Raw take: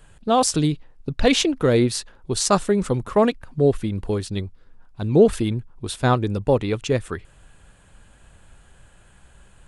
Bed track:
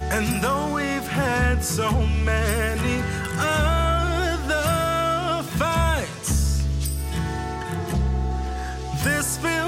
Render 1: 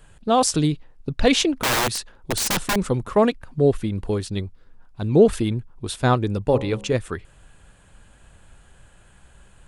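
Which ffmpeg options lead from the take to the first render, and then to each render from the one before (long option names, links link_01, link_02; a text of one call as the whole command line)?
ffmpeg -i in.wav -filter_complex "[0:a]asettb=1/sr,asplit=3[link_01][link_02][link_03];[link_01]atrim=end=1.624[link_04];[link_02]atrim=start=1.62:end=2.76,asetpts=PTS-STARTPTS,afade=type=in:duration=0.004:curve=qsin,afade=type=out:start_time=1.136:duration=0.004:curve=qsin,aeval=exprs='(mod(6.31*val(0)+1,2)-1)/6.31':channel_layout=same[link_05];[link_03]atrim=start=2.756[link_06];[link_04][link_05]acrossfade=duration=0.004:curve1=hsin:curve2=qsin[link_07];[link_07][link_06]acrossfade=duration=0.004:curve1=qsin:curve2=hsin,asettb=1/sr,asplit=3[link_08][link_09][link_10];[link_08]atrim=end=6.424[link_11];[link_09]atrim=start=6.42:end=6.94,asetpts=PTS-STARTPTS,afade=type=in:duration=0.004:curve=qsin,afade=type=out:start_time=0.516:duration=0.004:curve=qsin,bandreject=frequency=68.45:width_type=h:width=4,bandreject=frequency=136.9:width_type=h:width=4,bandreject=frequency=205.35:width_type=h:width=4,bandreject=frequency=273.8:width_type=h:width=4,bandreject=frequency=342.25:width_type=h:width=4,bandreject=frequency=410.7:width_type=h:width=4,bandreject=frequency=479.15:width_type=h:width=4,bandreject=frequency=547.6:width_type=h:width=4,bandreject=frequency=616.05:width_type=h:width=4,bandreject=frequency=684.5:width_type=h:width=4,bandreject=frequency=752.95:width_type=h:width=4,bandreject=frequency=821.4:width_type=h:width=4,bandreject=frequency=889.85:width_type=h:width=4,bandreject=frequency=958.3:width_type=h:width=4,bandreject=frequency=1026.75:width_type=h:width=4,bandreject=frequency=1095.2:width_type=h:width=4,bandreject=frequency=1163.65:width_type=h:width=4[link_12];[link_10]atrim=start=6.936[link_13];[link_11][link_12]acrossfade=duration=0.004:curve1=hsin:curve2=qsin[link_14];[link_14][link_13]acrossfade=duration=0.004:curve1=qsin:curve2=hsin" out.wav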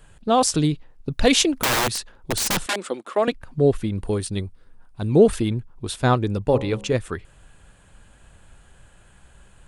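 ffmpeg -i in.wav -filter_complex "[0:a]asettb=1/sr,asplit=3[link_01][link_02][link_03];[link_01]atrim=end=1.114[link_04];[link_02]atrim=start=1.11:end=1.65,asetpts=PTS-STARTPTS,afade=type=in:duration=0.004:curve=qsin,afade=type=out:start_time=0.536:duration=0.004:curve=qsin,highshelf=frequency=7700:gain=11.5[link_05];[link_03]atrim=start=1.646[link_06];[link_04][link_05]acrossfade=duration=0.004:curve1=hsin:curve2=qsin[link_07];[link_07][link_06]acrossfade=duration=0.004:curve1=qsin:curve2=hsin,asettb=1/sr,asplit=3[link_08][link_09][link_10];[link_08]atrim=end=2.664[link_11];[link_09]atrim=start=2.66:end=3.28,asetpts=PTS-STARTPTS,afade=type=in:duration=0.004:curve=qsin,afade=type=out:start_time=0.616:duration=0.004:curve=qsin,highpass=frequency=310:width=0.5412,highpass=frequency=310:width=1.3066,equalizer=frequency=430:width_type=q:width=4:gain=-6,equalizer=frequency=960:width_type=q:width=4:gain=-6,equalizer=frequency=3300:width_type=q:width=4:gain=3,equalizer=frequency=5900:width_type=q:width=4:gain=-4,lowpass=frequency=10000:width=0.5412,lowpass=frequency=10000:width=1.3066[link_12];[link_10]atrim=start=3.276[link_13];[link_11][link_12]acrossfade=duration=0.004:curve1=hsin:curve2=qsin[link_14];[link_14][link_13]acrossfade=duration=0.004:curve1=qsin:curve2=hsin,asettb=1/sr,asplit=3[link_15][link_16][link_17];[link_15]atrim=end=4.014[link_18];[link_16]atrim=start=4.01:end=5.32,asetpts=PTS-STARTPTS,afade=type=in:duration=0.004:curve=qsin,afade=type=out:start_time=1.306:duration=0.004:curve=qsin,equalizer=frequency=9000:width=7.5:gain=13.5[link_19];[link_17]atrim=start=5.316[link_20];[link_18][link_19]acrossfade=duration=0.004:curve1=hsin:curve2=qsin[link_21];[link_21][link_20]acrossfade=duration=0.004:curve1=qsin:curve2=hsin" out.wav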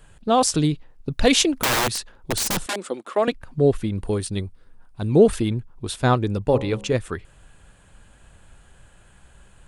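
ffmpeg -i in.wav -filter_complex "[0:a]asettb=1/sr,asplit=3[link_01][link_02][link_03];[link_01]atrim=end=2.434[link_04];[link_02]atrim=start=2.43:end=2.97,asetpts=PTS-STARTPTS,afade=type=in:duration=0.004:curve=qsin,afade=type=out:start_time=0.536:duration=0.004:curve=qsin,equalizer=frequency=2200:width_type=o:width=2.5:gain=-4[link_05];[link_03]atrim=start=2.966[link_06];[link_04][link_05]acrossfade=duration=0.004:curve1=hsin:curve2=qsin[link_07];[link_07][link_06]acrossfade=duration=0.004:curve1=qsin:curve2=hsin" out.wav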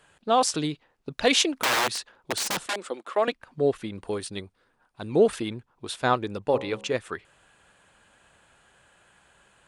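ffmpeg -i in.wav -af "highpass=frequency=600:poles=1,highshelf=frequency=7100:gain=-9.5" out.wav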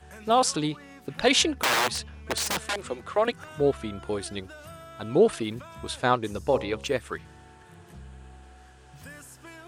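ffmpeg -i in.wav -i bed.wav -filter_complex "[1:a]volume=-23dB[link_01];[0:a][link_01]amix=inputs=2:normalize=0" out.wav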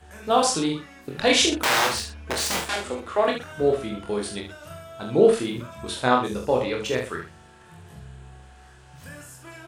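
ffmpeg -i in.wav -filter_complex "[0:a]asplit=2[link_01][link_02];[link_02]adelay=44,volume=-6dB[link_03];[link_01][link_03]amix=inputs=2:normalize=0,aecho=1:1:24|77:0.668|0.376" out.wav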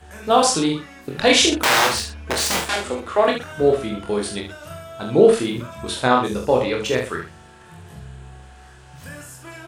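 ffmpeg -i in.wav -af "volume=4.5dB,alimiter=limit=-2dB:level=0:latency=1" out.wav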